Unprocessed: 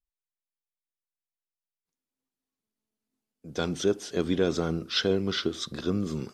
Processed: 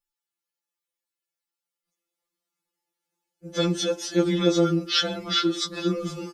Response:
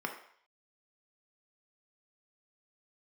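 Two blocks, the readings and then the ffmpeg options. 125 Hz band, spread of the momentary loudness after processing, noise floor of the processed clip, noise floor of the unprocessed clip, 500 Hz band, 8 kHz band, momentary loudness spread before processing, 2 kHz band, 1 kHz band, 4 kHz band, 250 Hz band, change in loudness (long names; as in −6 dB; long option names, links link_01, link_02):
+3.5 dB, 6 LU, below −85 dBFS, below −85 dBFS, +2.5 dB, +6.5 dB, 6 LU, +3.0 dB, +6.5 dB, +6.5 dB, +4.5 dB, +4.5 dB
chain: -filter_complex "[0:a]highpass=frequency=50:poles=1,aecho=1:1:3.5:0.54,bandreject=frequency=69.76:width_type=h:width=4,bandreject=frequency=139.52:width_type=h:width=4,bandreject=frequency=209.28:width_type=h:width=4,bandreject=frequency=279.04:width_type=h:width=4,bandreject=frequency=348.8:width_type=h:width=4,bandreject=frequency=418.56:width_type=h:width=4,bandreject=frequency=488.32:width_type=h:width=4,bandreject=frequency=558.08:width_type=h:width=4,bandreject=frequency=627.84:width_type=h:width=4,bandreject=frequency=697.6:width_type=h:width=4,bandreject=frequency=767.36:width_type=h:width=4,bandreject=frequency=837.12:width_type=h:width=4,bandreject=frequency=906.88:width_type=h:width=4,bandreject=frequency=976.64:width_type=h:width=4,bandreject=frequency=1046.4:width_type=h:width=4,asplit=2[link_01][link_02];[1:a]atrim=start_sample=2205[link_03];[link_02][link_03]afir=irnorm=-1:irlink=0,volume=-22dB[link_04];[link_01][link_04]amix=inputs=2:normalize=0,afftfilt=real='re*2.83*eq(mod(b,8),0)':imag='im*2.83*eq(mod(b,8),0)':win_size=2048:overlap=0.75,volume=7dB"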